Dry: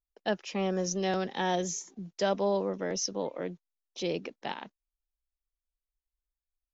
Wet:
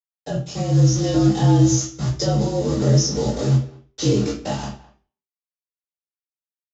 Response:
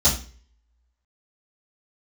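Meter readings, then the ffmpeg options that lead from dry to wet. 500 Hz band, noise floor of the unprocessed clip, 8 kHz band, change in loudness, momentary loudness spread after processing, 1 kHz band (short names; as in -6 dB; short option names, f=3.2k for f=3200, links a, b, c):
+6.5 dB, under -85 dBFS, n/a, +12.5 dB, 12 LU, +4.0 dB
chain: -filter_complex "[0:a]afreqshift=-46,agate=range=-33dB:threshold=-42dB:ratio=3:detection=peak,equalizer=f=2.4k:t=o:w=2.2:g=-3,aresample=16000,acrusher=bits=6:mix=0:aa=0.000001,aresample=44100,flanger=delay=17.5:depth=7.4:speed=0.93,acrossover=split=380[a][b];[b]acompressor=threshold=-43dB:ratio=6[c];[a][c]amix=inputs=2:normalize=0,asplit=2[d][e];[e]adelay=210,highpass=300,lowpass=3.4k,asoftclip=type=hard:threshold=-34dB,volume=-19dB[f];[d][f]amix=inputs=2:normalize=0,dynaudnorm=f=530:g=3:m=6dB,asplit=2[g][h];[h]adelay=28,volume=-11dB[i];[g][i]amix=inputs=2:normalize=0[j];[1:a]atrim=start_sample=2205,afade=t=out:st=0.43:d=0.01,atrim=end_sample=19404[k];[j][k]afir=irnorm=-1:irlink=0,adynamicequalizer=threshold=0.0141:dfrequency=5100:dqfactor=3.4:tfrequency=5100:tqfactor=3.4:attack=5:release=100:ratio=0.375:range=2.5:mode=boostabove:tftype=bell,volume=-6dB"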